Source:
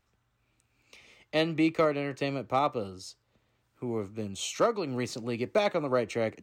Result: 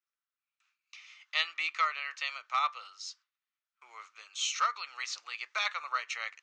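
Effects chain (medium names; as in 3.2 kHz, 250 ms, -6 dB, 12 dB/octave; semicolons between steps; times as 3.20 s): gate with hold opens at -53 dBFS; elliptic band-pass 1.2–6.4 kHz, stop band 70 dB; trim +4 dB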